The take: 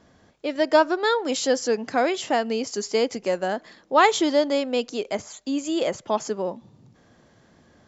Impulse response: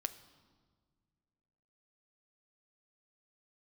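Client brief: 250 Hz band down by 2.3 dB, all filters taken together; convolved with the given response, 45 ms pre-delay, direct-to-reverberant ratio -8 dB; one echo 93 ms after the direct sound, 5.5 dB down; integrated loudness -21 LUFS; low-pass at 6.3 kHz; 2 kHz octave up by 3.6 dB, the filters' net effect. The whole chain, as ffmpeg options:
-filter_complex "[0:a]lowpass=6300,equalizer=f=250:t=o:g=-3,equalizer=f=2000:t=o:g=4.5,aecho=1:1:93:0.531,asplit=2[s0][s1];[1:a]atrim=start_sample=2205,adelay=45[s2];[s1][s2]afir=irnorm=-1:irlink=0,volume=2.66[s3];[s0][s3]amix=inputs=2:normalize=0,volume=0.422"

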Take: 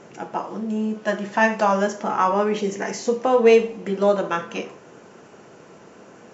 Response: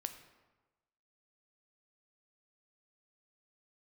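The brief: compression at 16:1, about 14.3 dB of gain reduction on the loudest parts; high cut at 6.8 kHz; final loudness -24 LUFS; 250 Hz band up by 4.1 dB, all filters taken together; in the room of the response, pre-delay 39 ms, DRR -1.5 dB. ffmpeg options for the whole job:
-filter_complex "[0:a]lowpass=6800,equalizer=f=250:t=o:g=5,acompressor=threshold=0.0794:ratio=16,asplit=2[s0][s1];[1:a]atrim=start_sample=2205,adelay=39[s2];[s1][s2]afir=irnorm=-1:irlink=0,volume=1.5[s3];[s0][s3]amix=inputs=2:normalize=0,volume=1.06"

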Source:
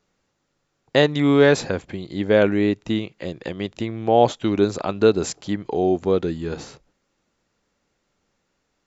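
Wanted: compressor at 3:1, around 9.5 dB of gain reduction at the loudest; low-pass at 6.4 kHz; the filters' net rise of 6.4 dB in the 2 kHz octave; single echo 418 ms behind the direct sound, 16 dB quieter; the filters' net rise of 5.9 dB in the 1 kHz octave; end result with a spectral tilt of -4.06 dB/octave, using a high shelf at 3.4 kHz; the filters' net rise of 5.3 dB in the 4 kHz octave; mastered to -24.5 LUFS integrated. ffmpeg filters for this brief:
-af "lowpass=6400,equalizer=f=1000:t=o:g=8,equalizer=f=2000:t=o:g=5,highshelf=f=3400:g=-6,equalizer=f=4000:t=o:g=8.5,acompressor=threshold=0.1:ratio=3,aecho=1:1:418:0.158,volume=1.06"

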